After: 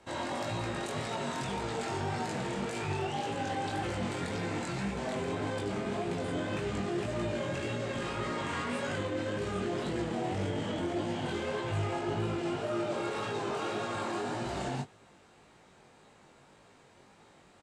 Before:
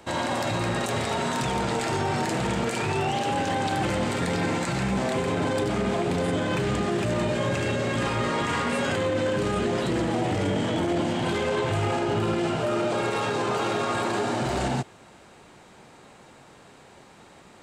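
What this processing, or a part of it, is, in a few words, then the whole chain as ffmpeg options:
double-tracked vocal: -filter_complex "[0:a]lowpass=11k,asplit=2[a][b];[b]adelay=20,volume=-11dB[c];[a][c]amix=inputs=2:normalize=0,flanger=delay=17.5:depth=5.4:speed=1.8,volume=-6dB"

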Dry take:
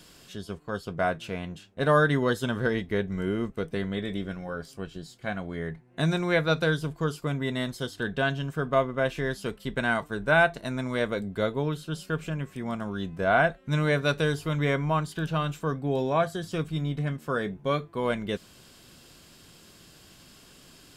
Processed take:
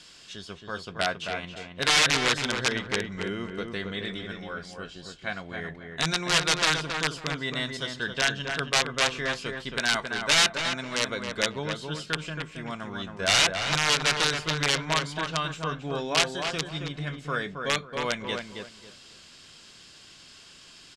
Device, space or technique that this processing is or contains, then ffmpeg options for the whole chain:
overflowing digital effects unit: -filter_complex "[0:a]asettb=1/sr,asplit=3[a][b][c];[a]atrim=end=9.794[d];[b]atrim=start=9.79:end=11.09,asetpts=PTS-STARTPTS,afade=t=in:d=0.004:c=qsin,afade=t=out:st=1.296:d=0.004:c=qsin,highpass=f=130:p=1[e];[c]atrim=start=11.086[f];[d][e]acrossfade=d=0.004:c1=hsin:c2=qsin[g];[g][f]acrossfade=d=0.004:c1=qsin:c2=hsin,aeval=exprs='(mod(6.68*val(0)+1,2)-1)/6.68':c=same,lowpass=7.4k,lowpass=8.6k,tiltshelf=f=1.1k:g=-7,asplit=2[h][i];[i]adelay=272,lowpass=f=2.1k:p=1,volume=-4.5dB,asplit=2[j][k];[k]adelay=272,lowpass=f=2.1k:p=1,volume=0.26,asplit=2[l][m];[m]adelay=272,lowpass=f=2.1k:p=1,volume=0.26,asplit=2[n][o];[o]adelay=272,lowpass=f=2.1k:p=1,volume=0.26[p];[h][j][l][n][p]amix=inputs=5:normalize=0"

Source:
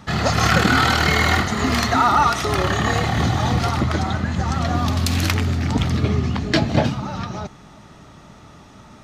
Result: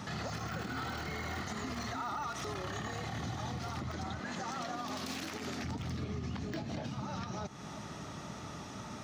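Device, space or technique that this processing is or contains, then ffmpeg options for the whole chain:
broadcast voice chain: -filter_complex "[0:a]asettb=1/sr,asplit=3[a][b][c];[a]atrim=end=4.194[d];[b]atrim=start=4.19:end=5.64,asetpts=PTS-STARTPTS,afade=t=in:d=0.004:c=qsin,afade=t=out:st=1.446:d=0.004:c=qsin,highpass=280[e];[c]atrim=start=5.636[f];[d][e]acrossfade=d=0.004:c1=hsin:c2=qsin[g];[g][f]acrossfade=d=0.004:c1=qsin:c2=hsin,highpass=82,deesser=0.65,acompressor=threshold=-36dB:ratio=4,equalizer=f=5.8k:t=o:w=0.49:g=4.5,alimiter=level_in=6dB:limit=-24dB:level=0:latency=1:release=67,volume=-6dB"

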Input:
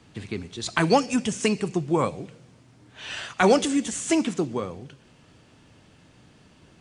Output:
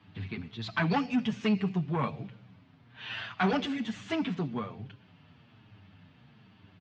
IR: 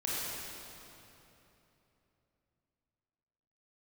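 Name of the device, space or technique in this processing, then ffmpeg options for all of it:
barber-pole flanger into a guitar amplifier: -filter_complex "[0:a]asplit=2[a][b];[b]adelay=7.4,afreqshift=-1.2[c];[a][c]amix=inputs=2:normalize=1,asoftclip=type=tanh:threshold=-19.5dB,highpass=97,equalizer=f=100:t=q:w=4:g=10,equalizer=f=190:t=q:w=4:g=4,equalizer=f=350:t=q:w=4:g=-8,equalizer=f=520:t=q:w=4:g=-9,lowpass=f=3.8k:w=0.5412,lowpass=f=3.8k:w=1.3066"

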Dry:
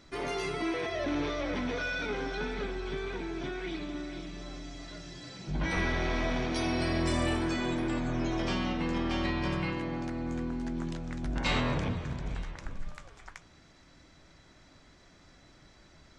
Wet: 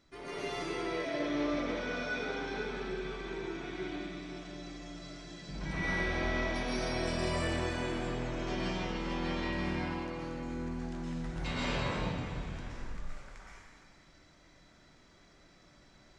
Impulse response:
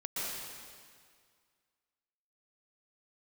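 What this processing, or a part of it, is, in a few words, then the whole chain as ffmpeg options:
stairwell: -filter_complex "[1:a]atrim=start_sample=2205[a];[0:a][a]afir=irnorm=-1:irlink=0,volume=-6.5dB"

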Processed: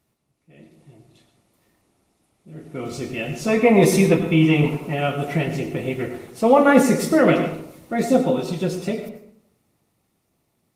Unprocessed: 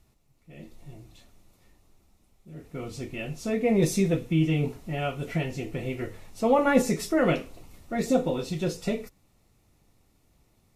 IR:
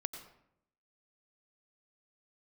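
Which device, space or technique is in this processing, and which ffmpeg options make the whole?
far-field microphone of a smart speaker: -filter_complex "[0:a]asettb=1/sr,asplit=3[a][b][c];[a]atrim=end=3.484[d];[b]atrim=start=3.48:end=4.94,asetpts=PTS-STARTPTS,afade=t=in:d=0.004:c=qsin,afade=t=out:st=1.456:d=0.004:c=qsin,equalizer=f=100:t=o:w=0.67:g=-6,equalizer=f=1k:t=o:w=0.67:g=11,equalizer=f=2.5k:t=o:w=0.67:g=5[e];[c]atrim=start=4.936[f];[d][e]acrossfade=d=0.004:c1=hsin:c2=qsin[g];[g][f]acrossfade=d=0.004:c1=qsin:c2=hsin[h];[1:a]atrim=start_sample=2205[i];[h][i]afir=irnorm=-1:irlink=0,highpass=130,dynaudnorm=f=280:g=17:m=11.5dB" -ar 48000 -c:a libopus -b:a 32k

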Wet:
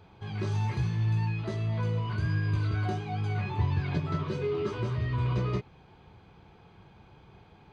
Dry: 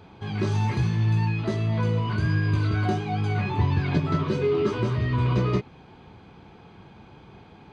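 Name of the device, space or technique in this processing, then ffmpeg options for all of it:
low shelf boost with a cut just above: -af "lowshelf=f=99:g=5,equalizer=f=250:t=o:w=0.69:g=-6,volume=-6.5dB"

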